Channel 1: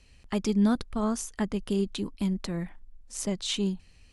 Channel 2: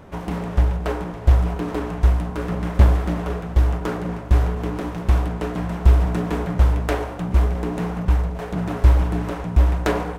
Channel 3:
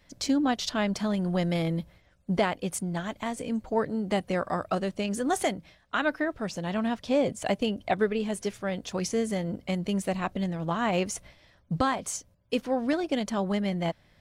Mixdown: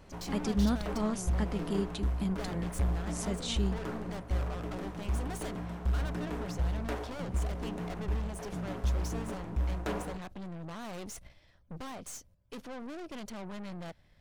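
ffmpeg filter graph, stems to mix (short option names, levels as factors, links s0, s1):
-filter_complex "[0:a]volume=0.531[s0];[1:a]asoftclip=type=tanh:threshold=0.299,volume=0.224[s1];[2:a]lowshelf=f=75:g=10.5,aeval=exprs='(tanh(70.8*val(0)+0.65)-tanh(0.65))/70.8':c=same,volume=0.668[s2];[s0][s1][s2]amix=inputs=3:normalize=0"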